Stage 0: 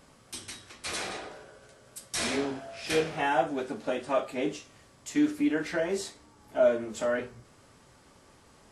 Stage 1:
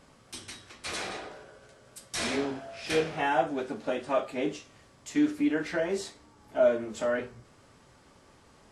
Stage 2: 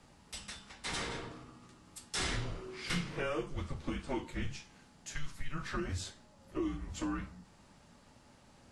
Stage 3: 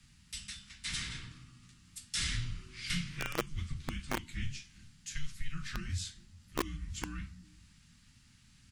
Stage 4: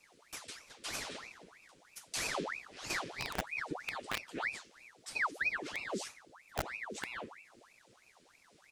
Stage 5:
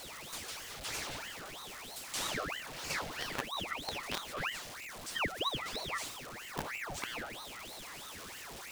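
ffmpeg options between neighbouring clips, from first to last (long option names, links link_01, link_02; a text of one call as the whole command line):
ffmpeg -i in.wav -af "highshelf=frequency=10000:gain=-9" out.wav
ffmpeg -i in.wav -filter_complex "[0:a]acrossover=split=170|3000[link_01][link_02][link_03];[link_02]acompressor=threshold=-31dB:ratio=6[link_04];[link_01][link_04][link_03]amix=inputs=3:normalize=0,afreqshift=-300,volume=-2.5dB" out.wav
ffmpeg -i in.wav -filter_complex "[0:a]acrossover=split=210|1600[link_01][link_02][link_03];[link_01]aecho=1:1:408:0.0944[link_04];[link_02]acrusher=bits=4:mix=0:aa=0.000001[link_05];[link_04][link_05][link_03]amix=inputs=3:normalize=0,volume=2.5dB" out.wav
ffmpeg -i in.wav -af "aeval=exprs='val(0)*sin(2*PI*1400*n/s+1400*0.8/3.1*sin(2*PI*3.1*n/s))':channel_layout=same" out.wav
ffmpeg -i in.wav -af "aeval=exprs='val(0)+0.5*0.0106*sgn(val(0))':channel_layout=same,aeval=exprs='val(0)*sin(2*PI*950*n/s+950*0.8/0.52*sin(2*PI*0.52*n/s))':channel_layout=same,volume=1dB" out.wav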